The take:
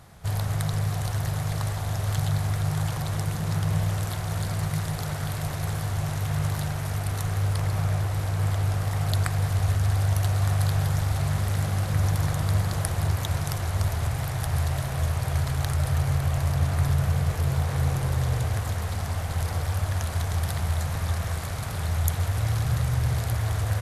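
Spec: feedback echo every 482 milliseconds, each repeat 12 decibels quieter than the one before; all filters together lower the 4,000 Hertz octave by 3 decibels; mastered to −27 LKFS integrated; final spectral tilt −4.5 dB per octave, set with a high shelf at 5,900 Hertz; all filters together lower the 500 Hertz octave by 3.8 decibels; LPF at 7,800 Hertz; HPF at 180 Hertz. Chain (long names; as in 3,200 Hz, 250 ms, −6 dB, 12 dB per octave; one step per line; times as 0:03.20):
high-pass filter 180 Hz
low-pass filter 7,800 Hz
parametric band 500 Hz −5 dB
parametric band 4,000 Hz −5 dB
high-shelf EQ 5,900 Hz +4.5 dB
repeating echo 482 ms, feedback 25%, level −12 dB
level +7 dB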